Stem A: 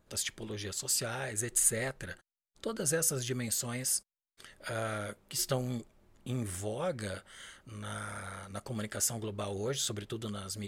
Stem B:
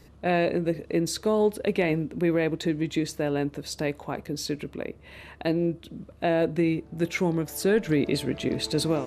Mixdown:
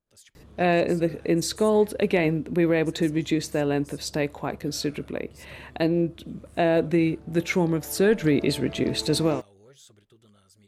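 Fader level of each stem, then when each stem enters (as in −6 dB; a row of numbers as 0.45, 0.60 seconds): −19.0, +2.5 decibels; 0.00, 0.35 seconds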